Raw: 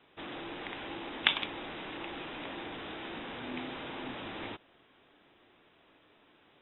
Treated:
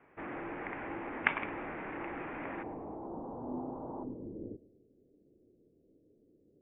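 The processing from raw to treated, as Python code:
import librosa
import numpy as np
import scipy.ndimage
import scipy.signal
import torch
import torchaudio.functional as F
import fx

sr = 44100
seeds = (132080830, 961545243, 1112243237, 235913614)

y = fx.steep_lowpass(x, sr, hz=fx.steps((0.0, 2300.0), (2.62, 1000.0), (4.03, 500.0)), slope=48)
y = fx.echo_feedback(y, sr, ms=109, feedback_pct=48, wet_db=-18.0)
y = y * 10.0 ** (1.5 / 20.0)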